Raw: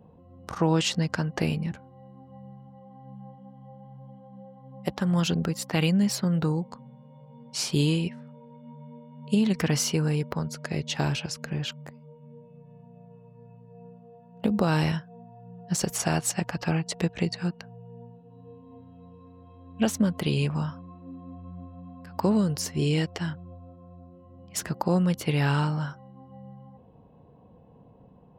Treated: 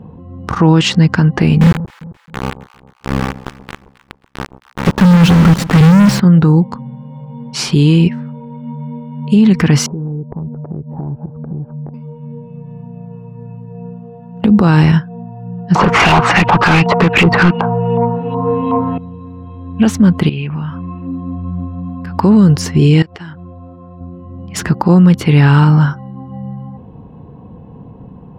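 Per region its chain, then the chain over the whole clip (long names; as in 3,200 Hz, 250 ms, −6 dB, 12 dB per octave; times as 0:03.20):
0:01.61–0:06.20: high-shelf EQ 2,100 Hz −10 dB + log-companded quantiser 2 bits + delay that swaps between a low-pass and a high-pass 133 ms, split 930 Hz, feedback 60%, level −14 dB
0:09.86–0:11.94: Butterworth low-pass 880 Hz + hum removal 237.8 Hz, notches 3 + downward compressor 4 to 1, threshold −42 dBFS
0:15.75–0:18.98: auto-filter low-pass saw up 2.7 Hz 900–3,100 Hz + mid-hump overdrive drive 29 dB, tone 6,100 Hz, clips at −11 dBFS + parametric band 1,700 Hz −9.5 dB 0.34 octaves
0:20.29–0:21.07: downward compressor 5 to 1, threshold −39 dBFS + low-pass with resonance 2,700 Hz, resonance Q 2.5
0:23.02–0:24.01: bass and treble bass −9 dB, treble −1 dB + downward compressor 4 to 1, threshold −47 dBFS
whole clip: low-pass filter 1,500 Hz 6 dB per octave; parametric band 600 Hz −9.5 dB 0.8 octaves; boost into a limiter +21.5 dB; level −1 dB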